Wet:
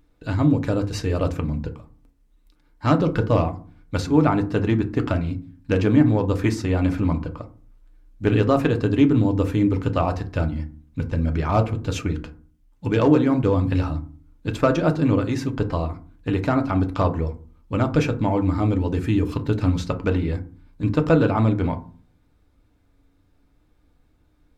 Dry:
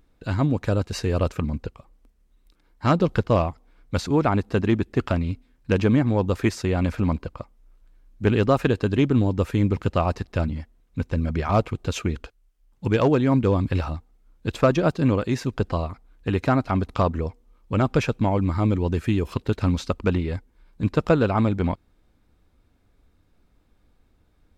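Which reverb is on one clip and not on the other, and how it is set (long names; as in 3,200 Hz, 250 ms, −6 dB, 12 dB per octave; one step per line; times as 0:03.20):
feedback delay network reverb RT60 0.4 s, low-frequency decay 1.6×, high-frequency decay 0.45×, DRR 5.5 dB
level −1 dB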